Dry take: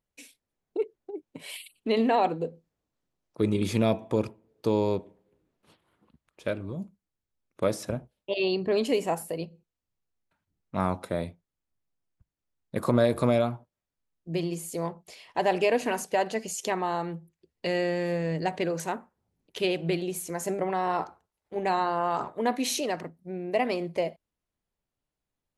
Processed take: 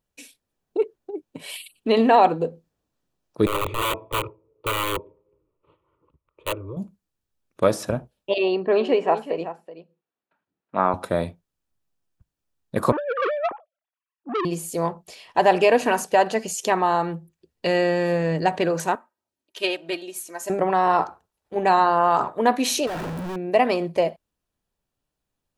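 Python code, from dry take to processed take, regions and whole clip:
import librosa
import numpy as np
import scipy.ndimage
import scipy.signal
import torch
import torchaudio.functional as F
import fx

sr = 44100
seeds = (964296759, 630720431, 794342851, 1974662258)

y = fx.chain(x, sr, fx.lowpass(hz=1500.0, slope=12),
    fx.overflow_wrap(gain_db=22.5),
    fx.fixed_phaser(hz=1100.0, stages=8), at=(3.46, 6.77))
y = fx.chain(y, sr, fx.bandpass_edges(low_hz=270.0, high_hz=2500.0),
    fx.echo_single(ms=377, db=-12.0), at=(8.38, 10.94))
y = fx.chain(y, sr, fx.sine_speech(),
    fx.over_compress(threshold_db=-30.0, ratio=-1.0),
    fx.transformer_sat(knee_hz=1400.0), at=(12.92, 14.45))
y = fx.chain(y, sr, fx.highpass(hz=800.0, slope=6),
    fx.comb(ms=3.2, depth=0.53),
    fx.upward_expand(threshold_db=-39.0, expansion=1.5), at=(18.95, 20.5))
y = fx.chain(y, sr, fx.clip_1bit(),
    fx.high_shelf(hz=3000.0, db=-10.5),
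    fx.notch(hz=1200.0, q=17.0), at=(22.87, 23.36))
y = fx.notch(y, sr, hz=2100.0, q=11.0)
y = fx.dynamic_eq(y, sr, hz=1100.0, q=0.71, threshold_db=-40.0, ratio=4.0, max_db=5)
y = F.gain(torch.from_numpy(y), 5.0).numpy()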